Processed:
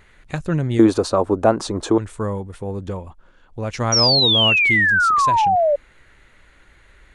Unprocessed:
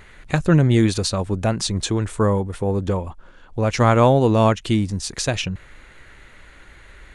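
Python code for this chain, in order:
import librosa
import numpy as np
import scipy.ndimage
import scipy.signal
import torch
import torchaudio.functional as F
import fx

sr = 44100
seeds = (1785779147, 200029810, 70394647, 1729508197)

y = fx.band_shelf(x, sr, hz=600.0, db=14.5, octaves=2.8, at=(0.79, 1.98))
y = fx.spec_paint(y, sr, seeds[0], shape='fall', start_s=3.92, length_s=1.84, low_hz=560.0, high_hz=5800.0, level_db=-10.0)
y = F.gain(torch.from_numpy(y), -6.0).numpy()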